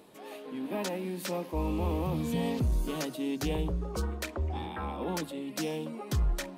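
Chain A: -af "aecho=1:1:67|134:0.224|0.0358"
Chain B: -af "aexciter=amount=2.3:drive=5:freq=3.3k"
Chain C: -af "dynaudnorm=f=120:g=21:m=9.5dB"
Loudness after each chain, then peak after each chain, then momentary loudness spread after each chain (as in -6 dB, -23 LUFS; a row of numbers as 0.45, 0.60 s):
-33.5, -32.0, -25.0 LUFS; -20.5, -15.0, -12.0 dBFS; 6, 6, 11 LU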